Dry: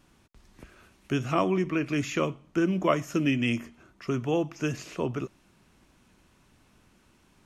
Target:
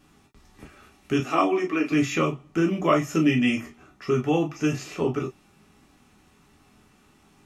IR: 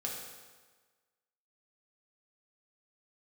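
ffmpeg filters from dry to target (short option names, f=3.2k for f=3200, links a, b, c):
-filter_complex "[0:a]asettb=1/sr,asplit=3[a][b][c];[a]atrim=end=1.204[d];[b]atrim=start=1.2:end=1.92,asetpts=PTS-STARTPTS,afade=t=in:d=0.004:c=qsin,afade=t=out:st=0.716:d=0.004:c=qsin,highpass=f=240:w=0.5412,highpass=f=240:w=1.3066[e];[c]atrim=start=1.916[f];[d][e]acrossfade=d=0.004:c1=hsin:c2=qsin[g];[g][f]acrossfade=d=0.004:c1=qsin:c2=hsin[h];[1:a]atrim=start_sample=2205,atrim=end_sample=3528,asetrate=70560,aresample=44100[i];[h][i]afir=irnorm=-1:irlink=0,volume=8dB"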